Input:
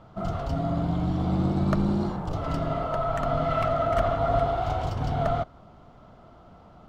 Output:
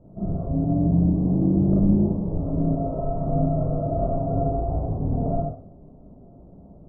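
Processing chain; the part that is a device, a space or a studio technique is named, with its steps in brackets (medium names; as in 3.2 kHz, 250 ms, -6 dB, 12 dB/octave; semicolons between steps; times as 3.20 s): next room (low-pass 540 Hz 24 dB/octave; reverberation RT60 0.45 s, pre-delay 27 ms, DRR -5.5 dB)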